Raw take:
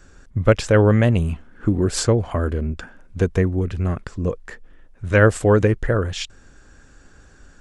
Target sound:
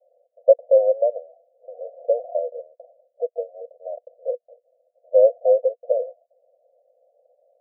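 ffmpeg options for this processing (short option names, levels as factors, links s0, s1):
-af "asuperpass=centerf=590:order=12:qfactor=2.6,volume=1.78"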